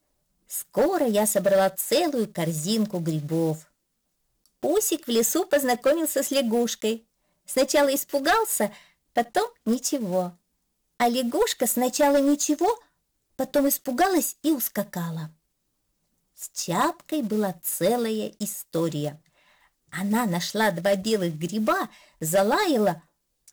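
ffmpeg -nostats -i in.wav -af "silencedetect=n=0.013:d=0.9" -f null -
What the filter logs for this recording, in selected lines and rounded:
silence_start: 3.60
silence_end: 4.63 | silence_duration: 1.03
silence_start: 15.27
silence_end: 16.39 | silence_duration: 1.12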